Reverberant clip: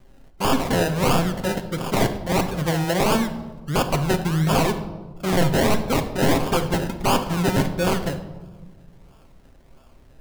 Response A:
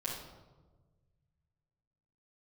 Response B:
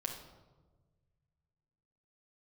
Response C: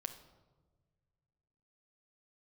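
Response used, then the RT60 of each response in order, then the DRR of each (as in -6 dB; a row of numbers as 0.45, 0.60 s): C; 1.3, 1.3, 1.4 s; -7.0, 0.5, 6.5 dB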